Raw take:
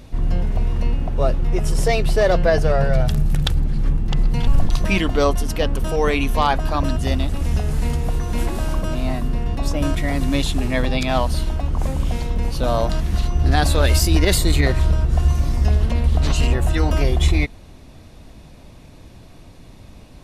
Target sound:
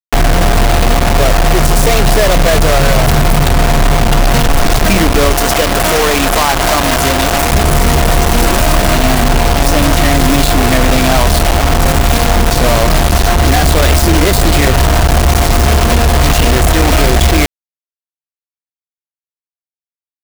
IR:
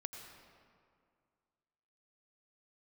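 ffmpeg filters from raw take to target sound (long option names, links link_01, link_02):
-filter_complex "[0:a]aeval=exprs='val(0)+0.0316*sin(2*PI*700*n/s)':channel_layout=same,acrossover=split=160|1800[link_01][link_02][link_03];[link_01]acompressor=threshold=-19dB:ratio=4[link_04];[link_02]acompressor=threshold=-21dB:ratio=4[link_05];[link_03]acompressor=threshold=-35dB:ratio=4[link_06];[link_04][link_05][link_06]amix=inputs=3:normalize=0,asoftclip=type=tanh:threshold=-11.5dB,acrusher=bits=3:mix=0:aa=0.000001,asettb=1/sr,asplit=3[link_07][link_08][link_09];[link_07]atrim=end=5.334[link_10];[link_08]atrim=start=5.33:end=7.53,asetpts=PTS-STARTPTS,afade=type=in:duration=0.004:curve=qsin,afade=type=out:start_time=2.196:duration=0.004:curve=qsin,lowshelf=frequency=240:gain=-9[link_11];[link_09]atrim=start=7.526[link_12];[link_10][link_11]acrossfade=duration=0.004:curve1=hsin:curve2=qsin[link_13];[link_13][link_12]acrossfade=duration=0.004:curve1=qsin:curve2=hsin,apsyclip=16dB,acompressor=threshold=-5dB:ratio=6,volume=-1dB"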